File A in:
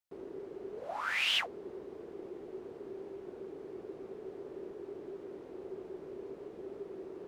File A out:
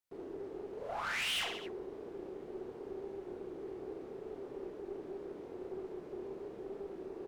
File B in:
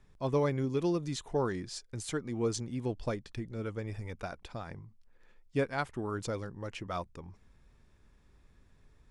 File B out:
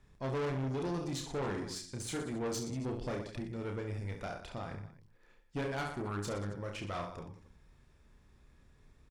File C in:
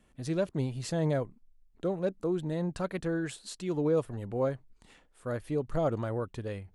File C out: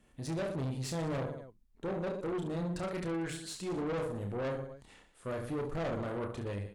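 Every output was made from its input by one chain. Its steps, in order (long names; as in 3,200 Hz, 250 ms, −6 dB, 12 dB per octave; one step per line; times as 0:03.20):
reverse bouncing-ball delay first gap 30 ms, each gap 1.3×, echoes 5
tube saturation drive 32 dB, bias 0.4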